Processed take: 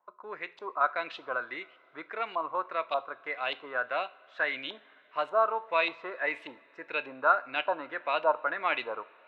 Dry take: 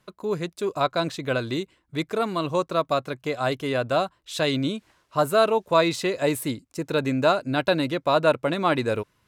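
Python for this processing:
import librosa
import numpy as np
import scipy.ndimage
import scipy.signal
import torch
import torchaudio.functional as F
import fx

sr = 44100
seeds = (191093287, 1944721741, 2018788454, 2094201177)

y = fx.bandpass_edges(x, sr, low_hz=650.0, high_hz=6400.0)
y = fx.filter_lfo_lowpass(y, sr, shape='saw_up', hz=1.7, low_hz=840.0, high_hz=3100.0, q=4.5)
y = fx.rev_double_slope(y, sr, seeds[0], early_s=0.38, late_s=4.4, knee_db=-21, drr_db=12.5)
y = y * librosa.db_to_amplitude(-8.0)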